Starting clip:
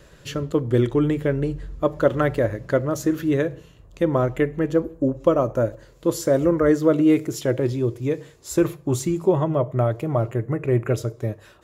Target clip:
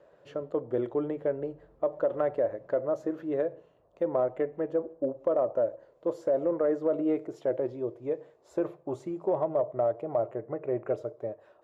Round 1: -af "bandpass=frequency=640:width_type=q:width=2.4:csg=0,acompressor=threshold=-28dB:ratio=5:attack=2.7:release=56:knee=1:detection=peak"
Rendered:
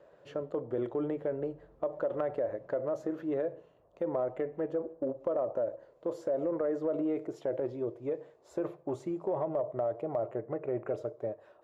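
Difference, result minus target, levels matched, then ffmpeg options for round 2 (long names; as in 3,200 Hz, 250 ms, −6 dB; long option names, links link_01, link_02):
downward compressor: peak gain reduction +5 dB
-af "bandpass=frequency=640:width_type=q:width=2.4:csg=0,acompressor=threshold=-21.5dB:ratio=5:attack=2.7:release=56:knee=1:detection=peak"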